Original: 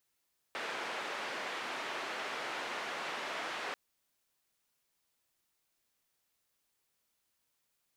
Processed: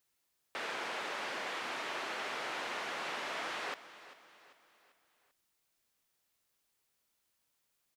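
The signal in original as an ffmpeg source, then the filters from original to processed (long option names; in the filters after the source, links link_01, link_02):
-f lavfi -i "anoisesrc=color=white:duration=3.19:sample_rate=44100:seed=1,highpass=frequency=370,lowpass=frequency=2100,volume=-24.1dB"
-af "aecho=1:1:393|786|1179|1572:0.168|0.0755|0.034|0.0153"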